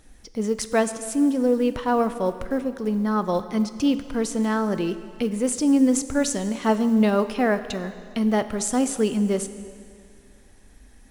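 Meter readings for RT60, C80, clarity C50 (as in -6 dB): 2.3 s, 13.0 dB, 12.5 dB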